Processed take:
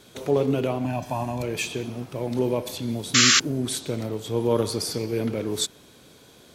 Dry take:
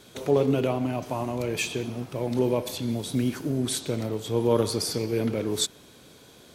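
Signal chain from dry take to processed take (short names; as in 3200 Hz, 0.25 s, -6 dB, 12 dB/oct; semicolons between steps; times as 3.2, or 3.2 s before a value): 0.84–1.43 comb 1.2 ms, depth 63%; 3.14–3.4 painted sound noise 1100–7500 Hz -17 dBFS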